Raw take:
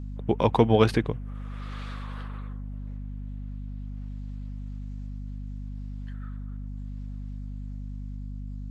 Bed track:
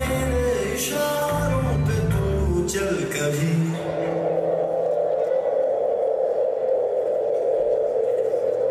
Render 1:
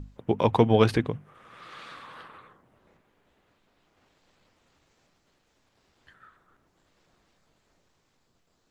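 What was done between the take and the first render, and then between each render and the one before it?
hum notches 50/100/150/200/250 Hz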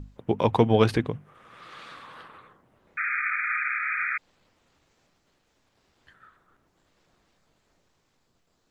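2.97–4.18 s: painted sound noise 1.2–2.5 kHz -28 dBFS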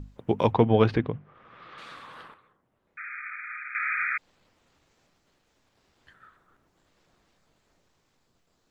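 0.53–1.78 s: distance through air 220 m; 2.34–3.75 s: gain -10.5 dB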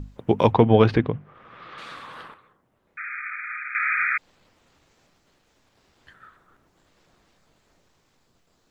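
trim +5 dB; peak limiter -2 dBFS, peak gain reduction 2 dB

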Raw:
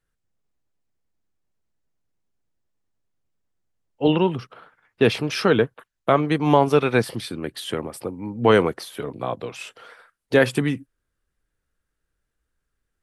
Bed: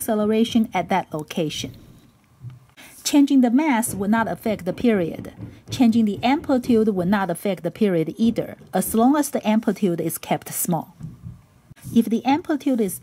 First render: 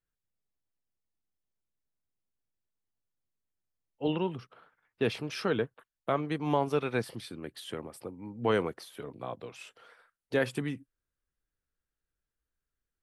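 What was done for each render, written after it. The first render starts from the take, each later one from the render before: trim -11.5 dB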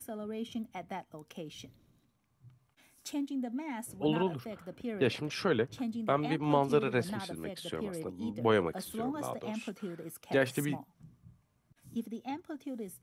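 add bed -20 dB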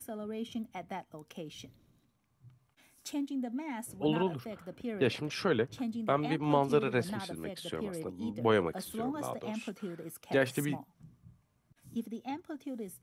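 no audible change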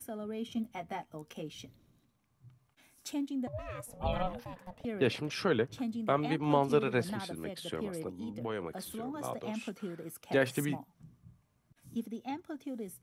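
0.55–1.47 s: doubling 13 ms -5 dB; 3.47–4.85 s: ring modulator 360 Hz; 8.08–9.24 s: compression 2.5:1, threshold -37 dBFS

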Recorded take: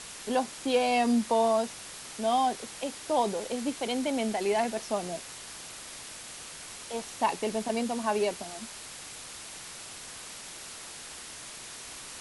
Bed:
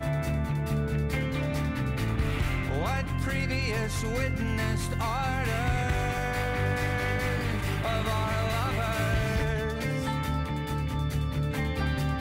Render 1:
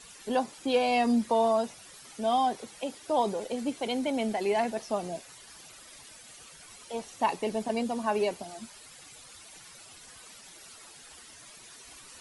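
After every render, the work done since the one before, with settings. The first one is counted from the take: noise reduction 12 dB, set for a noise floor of -44 dBFS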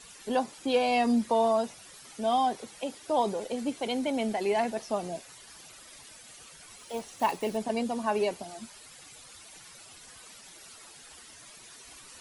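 6.78–7.59 s: block-companded coder 5-bit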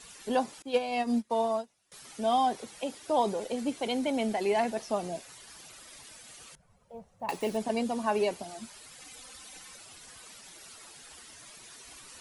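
0.62–1.92 s: upward expansion 2.5:1, over -37 dBFS; 6.55–7.29 s: FFT filter 190 Hz 0 dB, 300 Hz -23 dB, 530 Hz -6 dB, 3.3 kHz -28 dB; 9.00–9.76 s: comb 3.9 ms, depth 69%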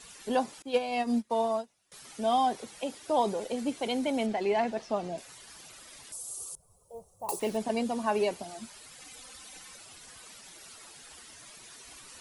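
4.26–5.18 s: distance through air 84 m; 6.12–7.40 s: FFT filter 110 Hz 0 dB, 250 Hz -11 dB, 370 Hz +5 dB, 570 Hz -1 dB, 1.2 kHz -2 dB, 1.7 kHz -23 dB, 8.9 kHz +14 dB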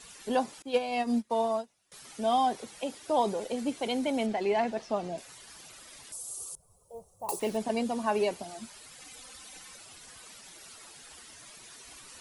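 no audible change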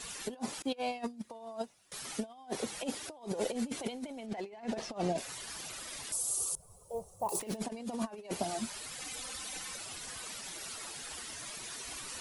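compressor with a negative ratio -36 dBFS, ratio -0.5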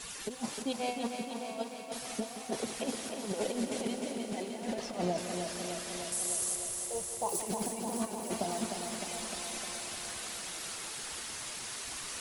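thinning echo 305 ms, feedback 75%, high-pass 150 Hz, level -6 dB; bit-crushed delay 175 ms, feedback 80%, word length 10-bit, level -11.5 dB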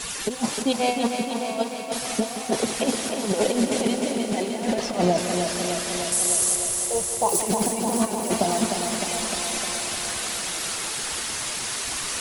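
trim +12 dB

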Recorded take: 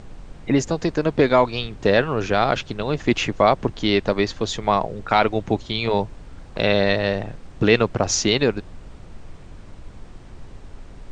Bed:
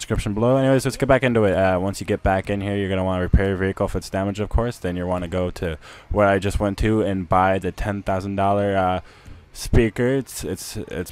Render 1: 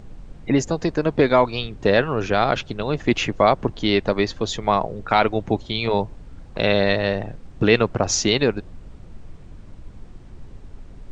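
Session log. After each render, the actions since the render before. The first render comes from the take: noise reduction 6 dB, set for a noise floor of -42 dBFS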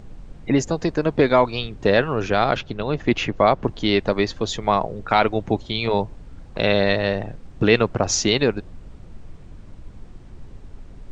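2.57–3.64 s: distance through air 78 m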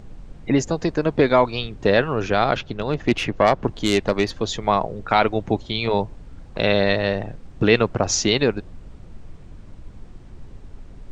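2.76–4.31 s: self-modulated delay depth 0.092 ms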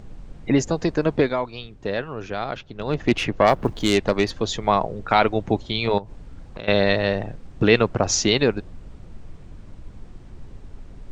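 1.14–2.94 s: dip -9 dB, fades 0.22 s; 3.48–3.93 s: companding laws mixed up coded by mu; 5.98–6.68 s: compression, threshold -31 dBFS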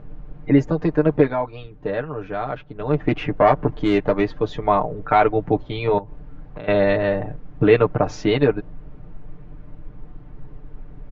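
low-pass 1.8 kHz 12 dB/octave; comb 6.7 ms, depth 74%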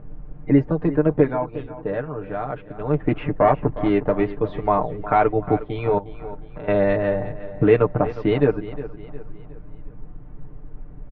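distance through air 430 m; feedback delay 360 ms, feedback 44%, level -15 dB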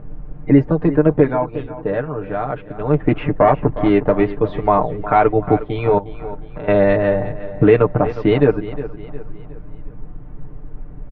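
trim +5 dB; peak limiter -1 dBFS, peak gain reduction 2.5 dB

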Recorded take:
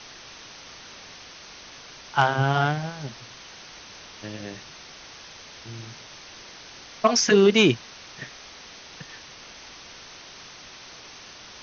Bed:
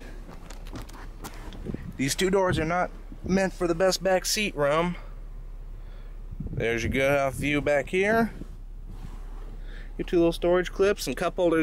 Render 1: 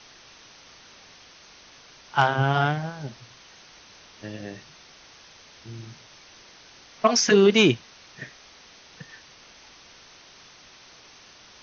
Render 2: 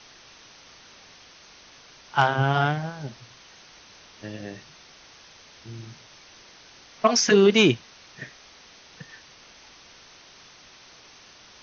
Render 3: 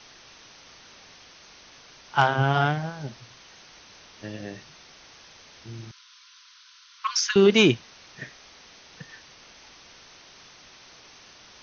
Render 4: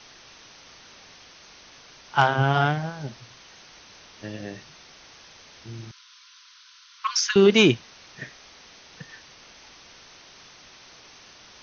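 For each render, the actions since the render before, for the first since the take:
noise print and reduce 6 dB
no audible change
5.91–7.36 s: rippled Chebyshev high-pass 980 Hz, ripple 6 dB
trim +1 dB

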